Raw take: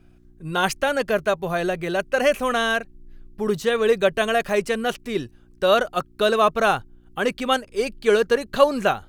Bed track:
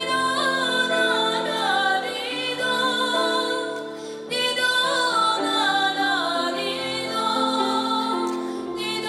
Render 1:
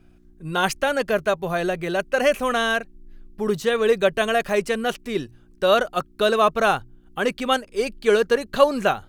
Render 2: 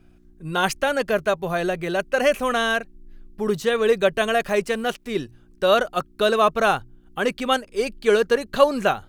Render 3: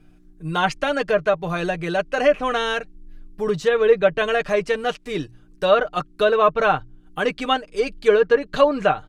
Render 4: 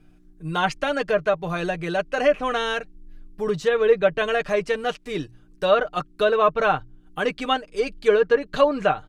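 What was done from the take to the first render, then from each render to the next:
de-hum 60 Hz, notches 2
4.63–5.11 G.711 law mismatch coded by A
comb 6.6 ms, depth 57%; treble ducked by the level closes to 2500 Hz, closed at -13 dBFS
gain -2 dB

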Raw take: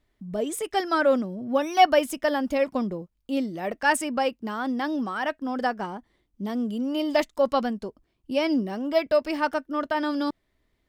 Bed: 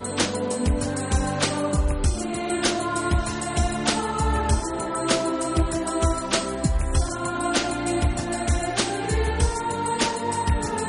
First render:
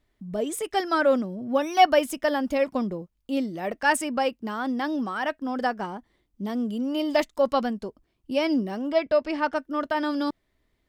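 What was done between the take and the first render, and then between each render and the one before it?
8.92–9.56 air absorption 81 m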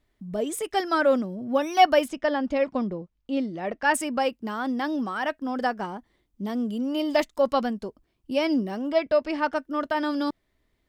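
2.08–3.94 air absorption 110 m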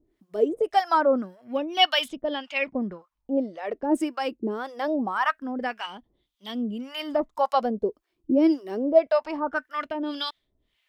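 harmonic tremolo 1.8 Hz, depth 100%, crossover 750 Hz; LFO bell 0.24 Hz 330–3500 Hz +16 dB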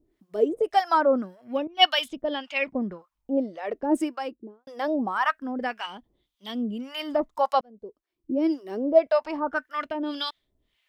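1.67–2.12 three-band expander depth 100%; 3.98–4.67 studio fade out; 7.61–8.98 fade in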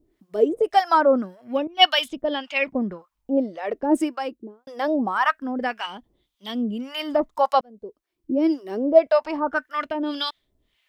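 gain +3.5 dB; limiter -2 dBFS, peak gain reduction 1 dB

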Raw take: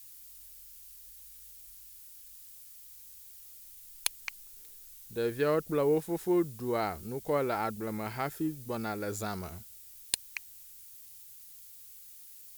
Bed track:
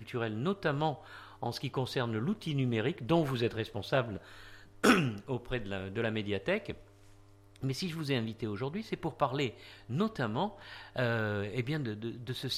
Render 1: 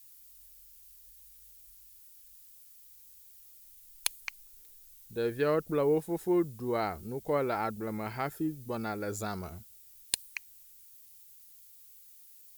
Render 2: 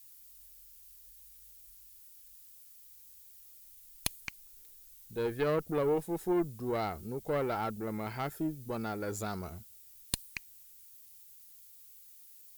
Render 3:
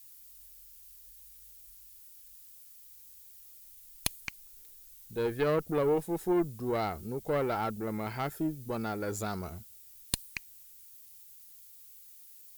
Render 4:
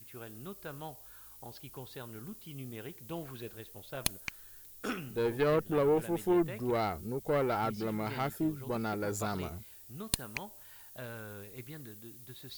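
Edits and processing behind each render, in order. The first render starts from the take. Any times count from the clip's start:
denoiser 6 dB, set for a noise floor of -52 dBFS
one diode to ground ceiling -27.5 dBFS
gain +2 dB
add bed track -13 dB

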